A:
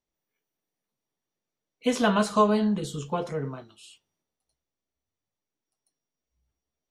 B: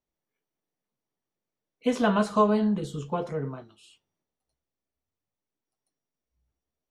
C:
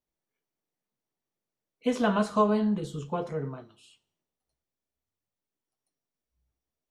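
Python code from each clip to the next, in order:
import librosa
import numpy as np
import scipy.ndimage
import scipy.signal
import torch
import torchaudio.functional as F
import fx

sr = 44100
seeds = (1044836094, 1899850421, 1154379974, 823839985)

y1 = fx.high_shelf(x, sr, hz=2500.0, db=-8.0)
y2 = fx.rev_plate(y1, sr, seeds[0], rt60_s=0.59, hf_ratio=1.0, predelay_ms=0, drr_db=16.0)
y2 = F.gain(torch.from_numpy(y2), -2.0).numpy()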